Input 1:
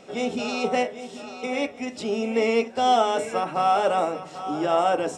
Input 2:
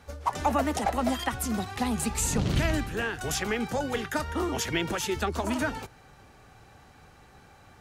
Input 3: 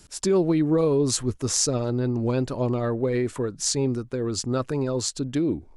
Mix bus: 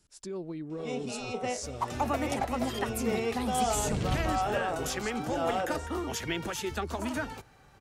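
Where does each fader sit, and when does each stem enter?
−10.0, −4.5, −17.0 decibels; 0.70, 1.55, 0.00 seconds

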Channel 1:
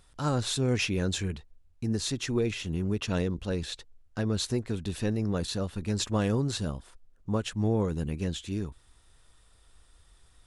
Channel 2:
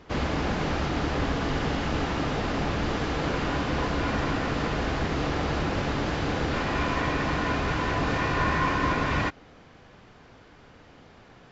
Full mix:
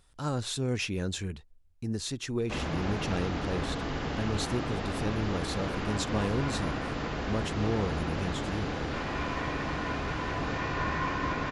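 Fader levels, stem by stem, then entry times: −3.5, −6.0 decibels; 0.00, 2.40 seconds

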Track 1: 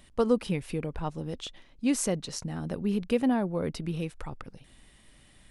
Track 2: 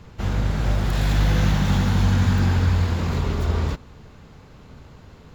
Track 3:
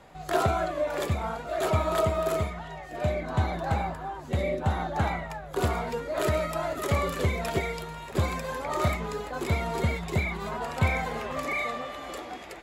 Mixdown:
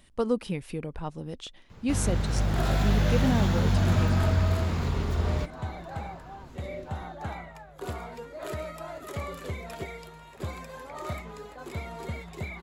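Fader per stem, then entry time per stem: −2.0, −5.0, −9.0 decibels; 0.00, 1.70, 2.25 seconds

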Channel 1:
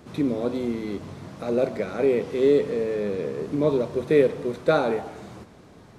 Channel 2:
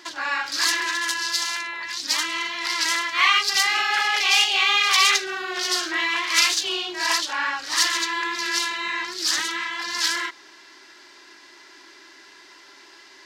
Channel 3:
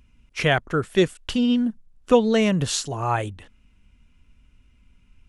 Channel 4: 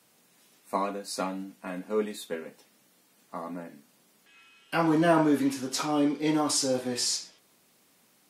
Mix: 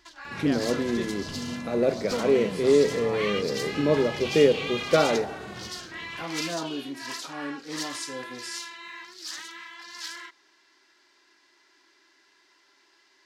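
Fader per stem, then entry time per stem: −0.5, −14.5, −15.5, −10.5 decibels; 0.25, 0.00, 0.00, 1.45 seconds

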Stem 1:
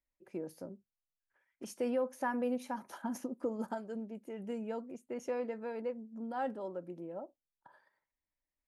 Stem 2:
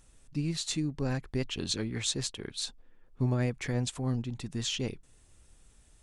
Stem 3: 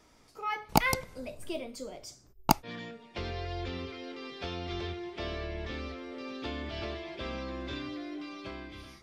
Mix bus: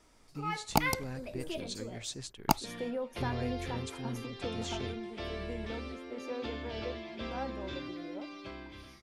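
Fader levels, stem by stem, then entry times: −3.5, −9.5, −3.0 decibels; 1.00, 0.00, 0.00 seconds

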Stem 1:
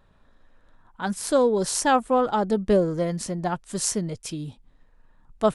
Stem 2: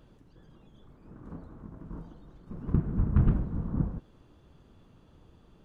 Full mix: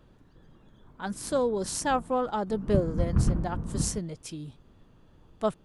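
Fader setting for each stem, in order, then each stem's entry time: −6.5, −1.0 decibels; 0.00, 0.00 seconds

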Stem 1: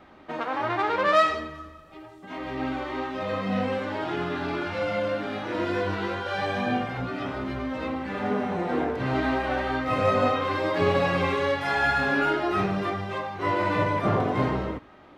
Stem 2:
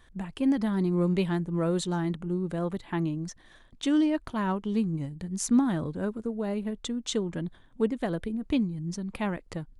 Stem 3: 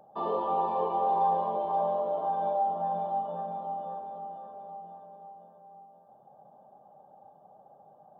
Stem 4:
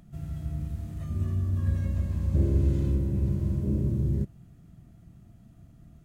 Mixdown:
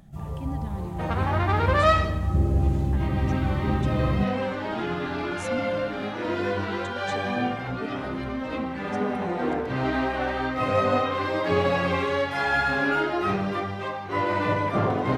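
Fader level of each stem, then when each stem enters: 0.0, −11.0, −13.0, +1.5 decibels; 0.70, 0.00, 0.00, 0.00 seconds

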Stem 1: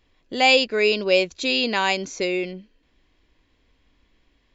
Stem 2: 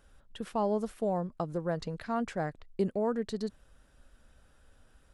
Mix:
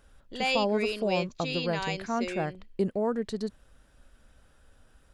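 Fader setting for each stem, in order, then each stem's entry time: −12.0, +2.0 decibels; 0.00, 0.00 seconds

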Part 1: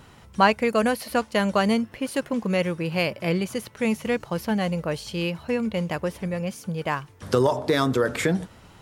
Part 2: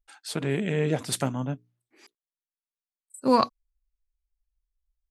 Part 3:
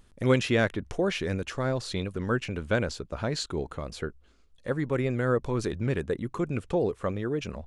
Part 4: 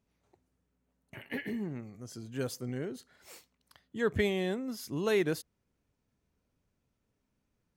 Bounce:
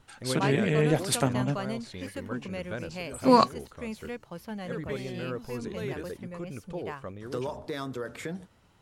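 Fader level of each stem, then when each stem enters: −13.5, +1.5, −10.5, −9.5 decibels; 0.00, 0.00, 0.00, 0.70 seconds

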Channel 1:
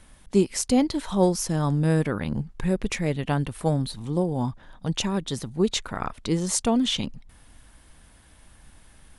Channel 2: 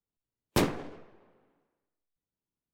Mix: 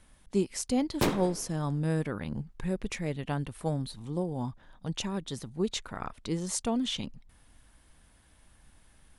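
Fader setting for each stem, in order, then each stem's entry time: −7.5, −1.0 decibels; 0.00, 0.45 seconds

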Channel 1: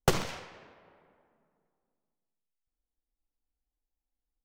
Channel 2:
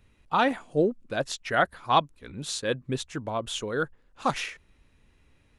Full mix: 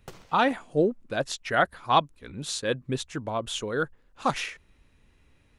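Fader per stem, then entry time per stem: −19.0, +0.5 decibels; 0.00, 0.00 seconds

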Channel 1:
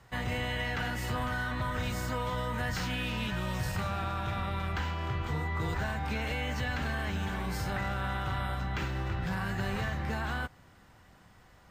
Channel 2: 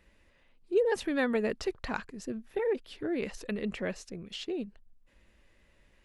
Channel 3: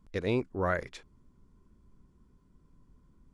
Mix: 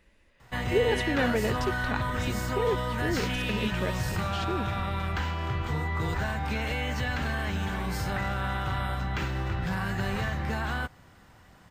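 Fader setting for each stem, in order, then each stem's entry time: +3.0, +1.0, −8.0 decibels; 0.40, 0.00, 0.60 seconds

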